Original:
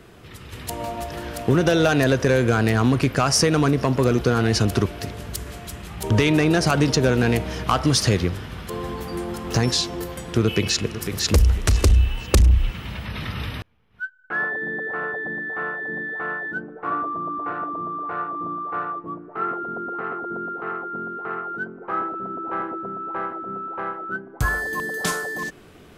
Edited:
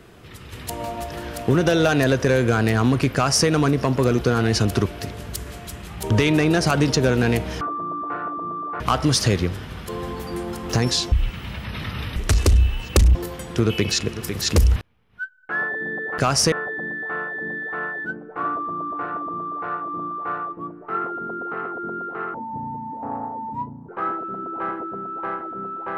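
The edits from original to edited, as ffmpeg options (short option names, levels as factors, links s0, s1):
-filter_complex "[0:a]asplit=11[s0][s1][s2][s3][s4][s5][s6][s7][s8][s9][s10];[s0]atrim=end=7.612[s11];[s1]atrim=start=16.968:end=18.162[s12];[s2]atrim=start=7.608:end=9.932[s13];[s3]atrim=start=12.528:end=13.572[s14];[s4]atrim=start=11.538:end=12.532[s15];[s5]atrim=start=9.928:end=11.542[s16];[s6]atrim=start=13.568:end=14.992[s17];[s7]atrim=start=3.138:end=3.482[s18];[s8]atrim=start=14.988:end=20.814[s19];[s9]atrim=start=20.81:end=21.8,asetpts=PTS-STARTPTS,asetrate=28224,aresample=44100,atrim=end_sample=68217,asetpts=PTS-STARTPTS[s20];[s10]atrim=start=21.796[s21];[s11][s12]acrossfade=d=0.004:c1=hsin:c2=hsin[s22];[s22][s13]acrossfade=d=0.004:c1=hsin:c2=hsin[s23];[s23][s14]acrossfade=d=0.004:c1=hsin:c2=hsin[s24];[s24][s15]acrossfade=d=0.004:c1=hsin:c2=hsin[s25];[s25][s16]acrossfade=d=0.004:c1=hsin:c2=hsin[s26];[s26][s17]acrossfade=d=0.004:c1=hsin:c2=hsin[s27];[s27][s18]acrossfade=d=0.004:c1=hsin:c2=hsin[s28];[s28][s19]acrossfade=d=0.004:c1=hsin:c2=hsin[s29];[s29][s20]acrossfade=d=0.004:c1=hsin:c2=hsin[s30];[s30][s21]acrossfade=d=0.004:c1=hsin:c2=hsin"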